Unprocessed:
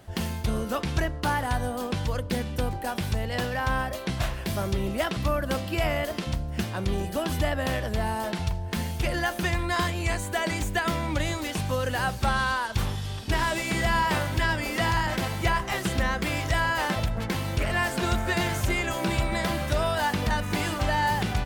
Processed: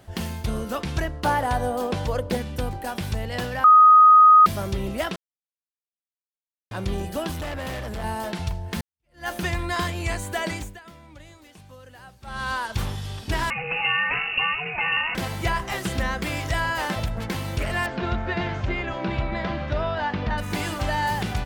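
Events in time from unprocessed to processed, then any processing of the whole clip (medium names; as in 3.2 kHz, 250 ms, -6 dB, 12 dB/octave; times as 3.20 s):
1.24–2.37 s: peaking EQ 600 Hz +7.5 dB 1.6 oct
3.64–4.46 s: bleep 1.25 kHz -8.5 dBFS
5.16–6.71 s: mute
7.31–8.04 s: hard clipper -28.5 dBFS
8.81–9.28 s: fade in exponential
10.48–12.55 s: dip -19 dB, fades 0.30 s
13.50–15.15 s: frequency inversion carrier 2.8 kHz
17.86–20.38 s: Gaussian low-pass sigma 2.2 samples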